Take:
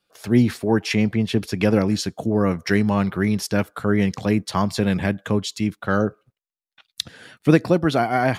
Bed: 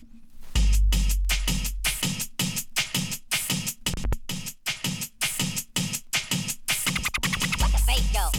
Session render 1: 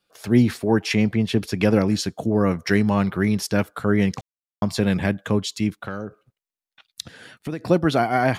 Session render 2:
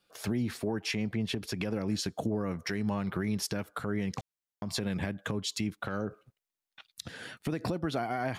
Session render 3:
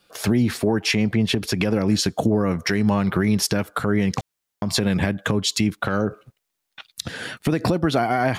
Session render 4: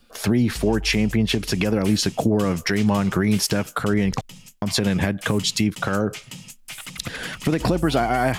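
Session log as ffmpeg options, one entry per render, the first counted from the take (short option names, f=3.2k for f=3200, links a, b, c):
-filter_complex "[0:a]asettb=1/sr,asplit=3[a][b][c];[a]atrim=end=5.694[d];[b]atrim=start=5.69:end=7.66,asetpts=PTS-STARTPTS,afade=t=in:d=0.004:c=qsin,afade=t=out:st=1.966:d=0.004:c=qsin,acompressor=threshold=-27dB:ratio=4:attack=3.2:release=140:knee=1:detection=peak[e];[c]atrim=start=7.656[f];[d][e]acrossfade=d=0.004:c1=hsin:c2=qsin[g];[g][f]acrossfade=d=0.004:c1=qsin:c2=hsin,asplit=3[h][i][j];[h]atrim=end=4.21,asetpts=PTS-STARTPTS,afade=t=out:st=4.206:d=0.004:c=hsin[k];[i]atrim=start=4.21:end=4.62,asetpts=PTS-STARTPTS,volume=0[l];[j]atrim=start=4.62,asetpts=PTS-STARTPTS,afade=t=in:d=0.004:c=hsin[m];[k][l][m]concat=n=3:v=0:a=1"
-af "acompressor=threshold=-25dB:ratio=12,alimiter=limit=-21.5dB:level=0:latency=1:release=94"
-af "volume=12dB"
-filter_complex "[1:a]volume=-11.5dB[a];[0:a][a]amix=inputs=2:normalize=0"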